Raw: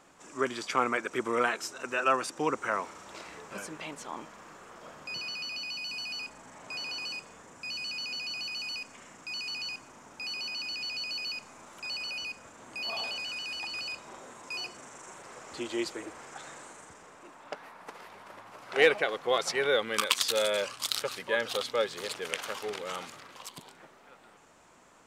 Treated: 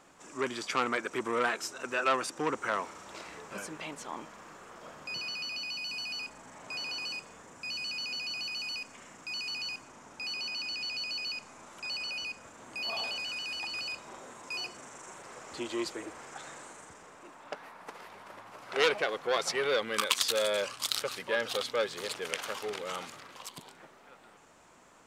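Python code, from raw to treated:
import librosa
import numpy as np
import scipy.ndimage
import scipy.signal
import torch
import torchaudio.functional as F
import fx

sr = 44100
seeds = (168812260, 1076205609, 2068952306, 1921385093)

y = fx.lowpass(x, sr, hz=12000.0, slope=12, at=(9.83, 12.41))
y = fx.transformer_sat(y, sr, knee_hz=2600.0)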